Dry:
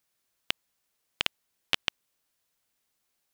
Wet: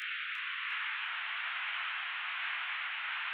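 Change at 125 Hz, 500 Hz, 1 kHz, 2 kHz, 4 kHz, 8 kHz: under -40 dB, under -10 dB, +6.5 dB, +6.0 dB, -4.5 dB, under -20 dB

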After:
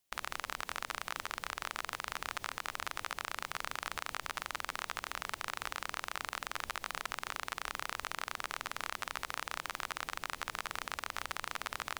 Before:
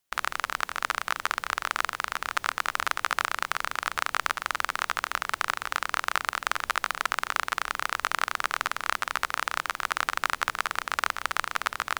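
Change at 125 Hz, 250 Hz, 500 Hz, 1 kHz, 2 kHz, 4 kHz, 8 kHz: -4.0 dB, -6.0 dB, -8.0 dB, -12.0 dB, -11.5 dB, -8.5 dB, -8.0 dB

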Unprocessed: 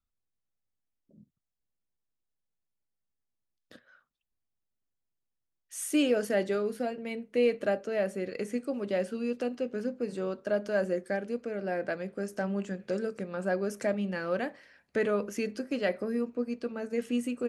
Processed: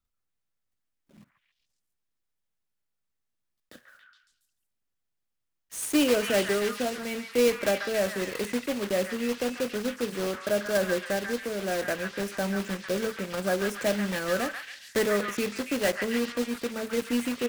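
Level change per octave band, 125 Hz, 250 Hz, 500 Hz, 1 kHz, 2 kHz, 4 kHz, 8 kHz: +2.5 dB, +2.5 dB, +2.5 dB, +5.0 dB, +6.5 dB, +10.0 dB, +9.0 dB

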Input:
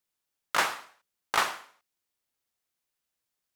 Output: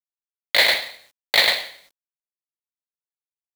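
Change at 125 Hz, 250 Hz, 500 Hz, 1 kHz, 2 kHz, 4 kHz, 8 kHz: no reading, +3.5 dB, +10.5 dB, -1.0 dB, +11.5 dB, +17.0 dB, +4.5 dB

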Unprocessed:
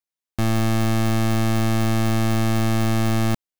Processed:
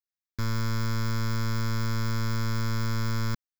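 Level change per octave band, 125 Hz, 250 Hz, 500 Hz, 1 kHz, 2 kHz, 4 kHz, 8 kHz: -7.0 dB, -12.5 dB, -14.0 dB, -9.0 dB, -6.5 dB, -6.0 dB, -9.0 dB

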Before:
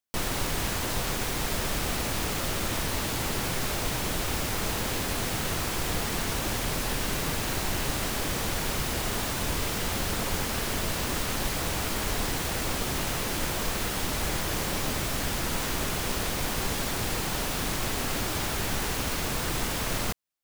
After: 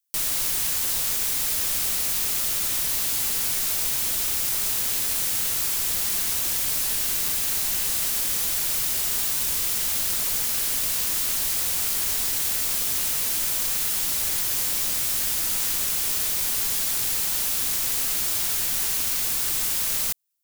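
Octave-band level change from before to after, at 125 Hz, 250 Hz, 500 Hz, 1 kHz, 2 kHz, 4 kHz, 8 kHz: -11.5 dB, -11.0 dB, -10.0 dB, -7.0 dB, -2.5 dB, +3.0 dB, +8.5 dB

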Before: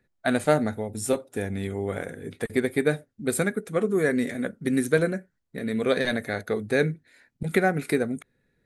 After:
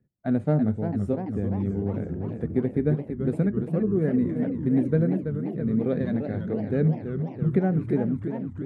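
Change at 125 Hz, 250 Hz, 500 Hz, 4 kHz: +7.5 dB, +3.5 dB, -3.5 dB, under -20 dB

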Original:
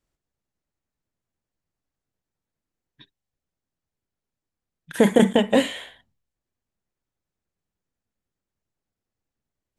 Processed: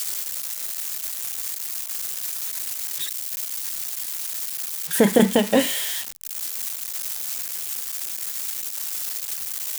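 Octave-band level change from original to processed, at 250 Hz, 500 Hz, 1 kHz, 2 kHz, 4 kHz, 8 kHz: 0.0 dB, 0.0 dB, +0.5 dB, +2.0 dB, +6.0 dB, +18.5 dB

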